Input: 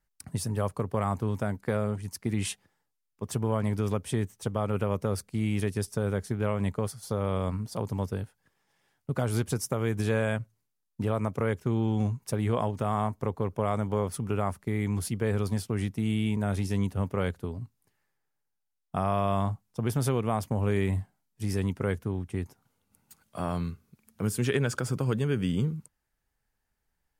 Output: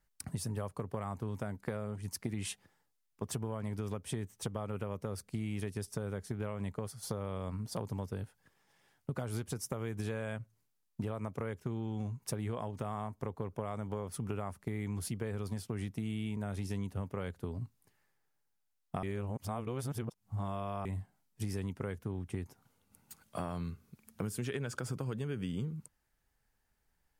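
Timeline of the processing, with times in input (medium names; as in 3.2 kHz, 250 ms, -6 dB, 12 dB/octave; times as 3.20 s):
19.03–20.85 s: reverse
whole clip: compression 6:1, threshold -36 dBFS; trim +1.5 dB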